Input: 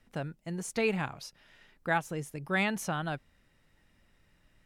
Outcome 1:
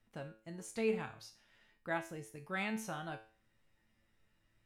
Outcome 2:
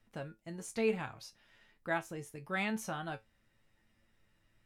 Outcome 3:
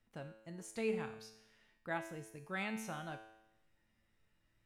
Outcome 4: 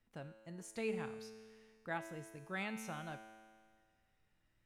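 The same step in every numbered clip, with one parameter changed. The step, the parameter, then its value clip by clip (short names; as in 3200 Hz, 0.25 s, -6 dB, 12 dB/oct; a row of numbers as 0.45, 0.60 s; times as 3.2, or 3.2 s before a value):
resonator, decay: 0.4, 0.16, 0.87, 1.8 s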